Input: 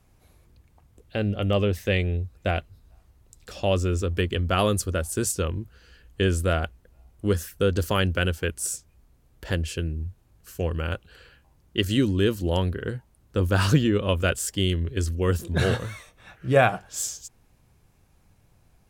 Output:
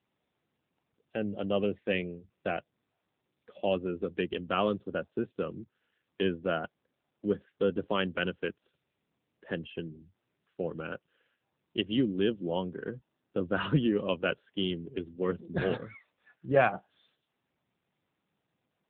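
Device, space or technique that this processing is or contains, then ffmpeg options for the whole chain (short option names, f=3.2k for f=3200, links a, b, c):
mobile call with aggressive noise cancelling: -af "highpass=f=150:w=0.5412,highpass=f=150:w=1.3066,afftdn=nr=14:nf=-36,volume=-4.5dB" -ar 8000 -c:a libopencore_amrnb -b:a 7950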